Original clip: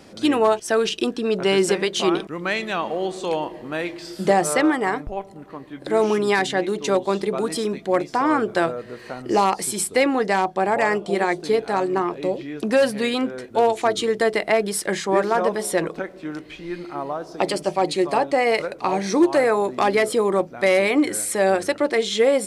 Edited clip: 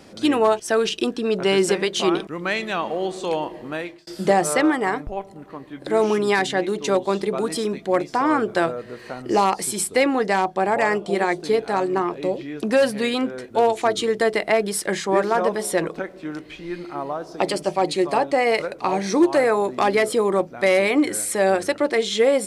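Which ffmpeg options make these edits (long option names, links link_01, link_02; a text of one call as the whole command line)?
ffmpeg -i in.wav -filter_complex "[0:a]asplit=2[link_01][link_02];[link_01]atrim=end=4.07,asetpts=PTS-STARTPTS,afade=type=out:start_time=3.7:duration=0.37[link_03];[link_02]atrim=start=4.07,asetpts=PTS-STARTPTS,afade=type=in:duration=0.004:curve=hsin[link_04];[link_03][link_04]concat=n=2:v=0:a=1" out.wav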